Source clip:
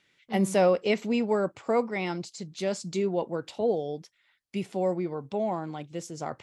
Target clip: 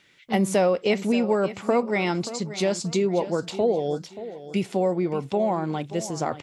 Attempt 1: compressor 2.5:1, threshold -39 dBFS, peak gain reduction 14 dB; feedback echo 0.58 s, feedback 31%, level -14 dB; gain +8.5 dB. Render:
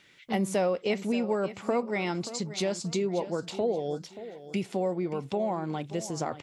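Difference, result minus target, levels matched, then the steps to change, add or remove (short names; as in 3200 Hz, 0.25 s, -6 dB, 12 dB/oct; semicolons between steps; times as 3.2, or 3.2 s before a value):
compressor: peak gain reduction +6 dB
change: compressor 2.5:1, threshold -29 dBFS, peak gain reduction 8 dB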